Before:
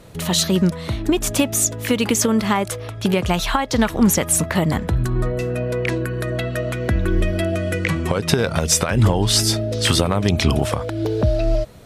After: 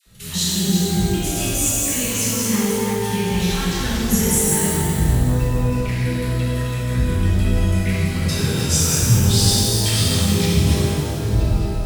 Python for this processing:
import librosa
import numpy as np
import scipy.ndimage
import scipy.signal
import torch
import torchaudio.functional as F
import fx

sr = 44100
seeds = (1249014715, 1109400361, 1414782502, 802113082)

y = fx.reverse_delay(x, sr, ms=192, wet_db=-4.5)
y = fx.tone_stack(y, sr, knobs='6-0-2')
y = fx.dispersion(y, sr, late='lows', ms=65.0, hz=840.0)
y = fx.rev_shimmer(y, sr, seeds[0], rt60_s=2.1, semitones=12, shimmer_db=-8, drr_db=-9.0)
y = y * librosa.db_to_amplitude(5.5)